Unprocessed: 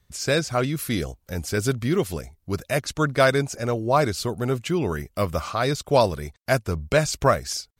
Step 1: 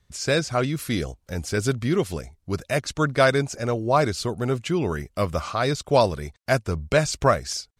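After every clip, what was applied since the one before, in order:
low-pass filter 9,900 Hz 12 dB per octave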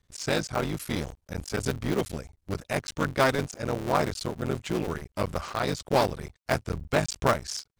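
sub-harmonics by changed cycles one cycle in 3, muted
level −3.5 dB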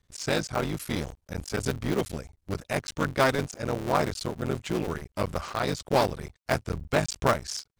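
no processing that can be heard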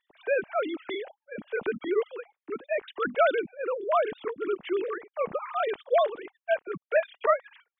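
three sine waves on the formant tracks

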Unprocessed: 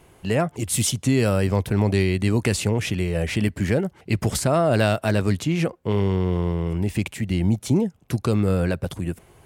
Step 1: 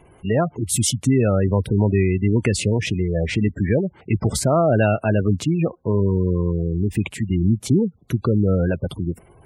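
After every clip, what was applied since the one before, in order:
gate on every frequency bin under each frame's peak −20 dB strong
level +2.5 dB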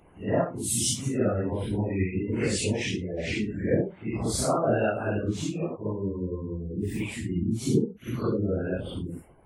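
random phases in long frames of 200 ms
harmonic and percussive parts rebalanced harmonic −14 dB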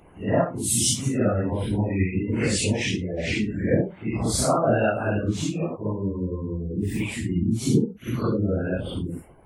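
dynamic equaliser 400 Hz, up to −5 dB, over −38 dBFS, Q 2.8
level +4.5 dB

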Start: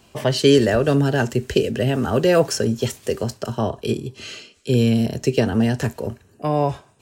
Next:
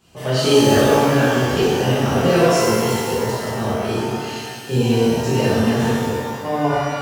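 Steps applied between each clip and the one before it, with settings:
mains-hum notches 60/120 Hz
reverb with rising layers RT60 1.8 s, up +12 semitones, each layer −8 dB, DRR −11 dB
level −9 dB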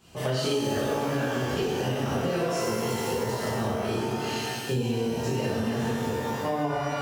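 downward compressor 6 to 1, threshold −25 dBFS, peak gain reduction 15.5 dB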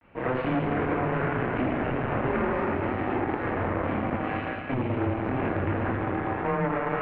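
harmonic generator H 6 −11 dB, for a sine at −14.5 dBFS
log-companded quantiser 4 bits
single-sideband voice off tune −130 Hz 200–2,400 Hz

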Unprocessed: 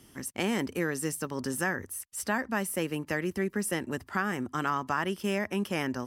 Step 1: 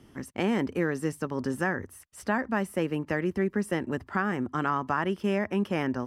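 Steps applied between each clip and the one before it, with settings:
low-pass filter 1,600 Hz 6 dB per octave
level +3.5 dB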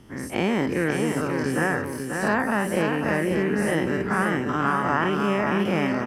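every bin's largest magnitude spread in time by 120 ms
on a send: repeating echo 539 ms, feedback 33%, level −5 dB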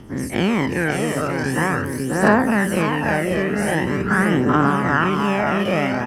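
phase shifter 0.44 Hz, delay 1.7 ms, feedback 48%
level +4 dB

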